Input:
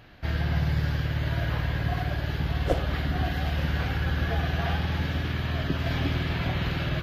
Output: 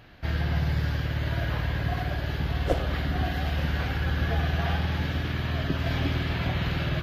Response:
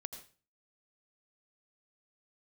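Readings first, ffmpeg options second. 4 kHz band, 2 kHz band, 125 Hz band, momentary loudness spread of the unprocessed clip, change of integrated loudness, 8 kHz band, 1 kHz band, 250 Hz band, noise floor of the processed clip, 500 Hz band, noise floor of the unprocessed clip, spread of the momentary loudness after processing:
0.0 dB, 0.0 dB, 0.0 dB, 2 LU, 0.0 dB, n/a, 0.0 dB, -0.5 dB, -32 dBFS, 0.0 dB, -32 dBFS, 3 LU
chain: -filter_complex "[0:a]asplit=2[a][b];[1:a]atrim=start_sample=2205[c];[b][c]afir=irnorm=-1:irlink=0,volume=-2.5dB[d];[a][d]amix=inputs=2:normalize=0,volume=-3.5dB"

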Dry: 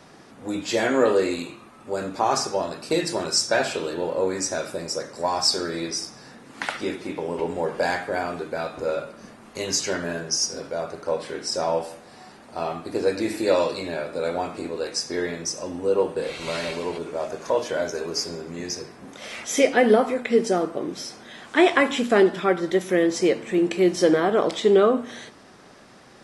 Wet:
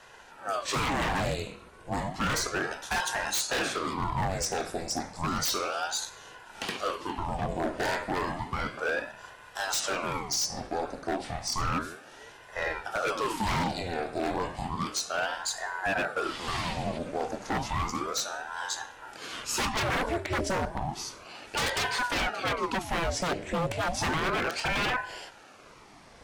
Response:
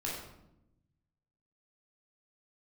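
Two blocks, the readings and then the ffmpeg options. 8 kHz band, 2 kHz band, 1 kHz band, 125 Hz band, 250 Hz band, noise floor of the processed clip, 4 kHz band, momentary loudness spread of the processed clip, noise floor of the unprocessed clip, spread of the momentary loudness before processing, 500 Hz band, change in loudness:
-3.5 dB, -1.5 dB, -2.0 dB, +1.5 dB, -10.0 dB, -52 dBFS, -4.0 dB, 8 LU, -49 dBFS, 13 LU, -12.0 dB, -6.5 dB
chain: -af "asuperstop=centerf=1000:order=20:qfactor=4.6,aeval=exprs='0.1*(abs(mod(val(0)/0.1+3,4)-2)-1)':c=same,aeval=exprs='val(0)*sin(2*PI*700*n/s+700*0.8/0.32*sin(2*PI*0.32*n/s))':c=same"

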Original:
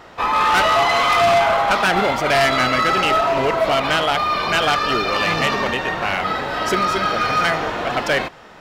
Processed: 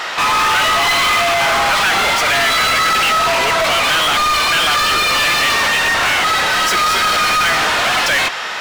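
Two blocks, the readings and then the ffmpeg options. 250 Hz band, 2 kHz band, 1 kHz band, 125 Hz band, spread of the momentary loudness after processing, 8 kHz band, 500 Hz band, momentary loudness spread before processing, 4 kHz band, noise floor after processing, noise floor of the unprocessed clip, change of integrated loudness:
-3.5 dB, +6.5 dB, +2.5 dB, -2.5 dB, 1 LU, +13.0 dB, -2.5 dB, 6 LU, +8.5 dB, -23 dBFS, -42 dBFS, +4.5 dB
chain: -filter_complex "[0:a]tiltshelf=f=1.1k:g=-8,asplit=2[a][b];[b]highpass=f=720:p=1,volume=34dB,asoftclip=type=tanh:threshold=-1.5dB[c];[a][c]amix=inputs=2:normalize=0,lowpass=f=5.7k:p=1,volume=-6dB,volume=-6.5dB"

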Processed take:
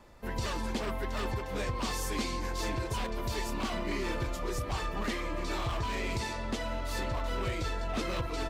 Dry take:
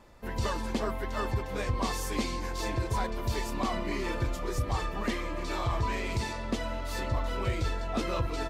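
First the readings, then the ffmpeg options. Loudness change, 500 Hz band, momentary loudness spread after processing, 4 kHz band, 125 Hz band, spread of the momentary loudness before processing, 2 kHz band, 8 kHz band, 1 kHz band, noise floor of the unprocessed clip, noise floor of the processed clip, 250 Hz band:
-2.0 dB, -2.0 dB, 2 LU, +0.5 dB, -3.5 dB, 3 LU, -0.5 dB, 0.0 dB, -2.0 dB, -36 dBFS, -37 dBFS, -2.0 dB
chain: -filter_complex "[0:a]acrossover=split=370|2600[a][b][c];[a]alimiter=level_in=3dB:limit=-24dB:level=0:latency=1:release=215,volume=-3dB[d];[b]aeval=exprs='0.0237*(abs(mod(val(0)/0.0237+3,4)-2)-1)':c=same[e];[d][e][c]amix=inputs=3:normalize=0"

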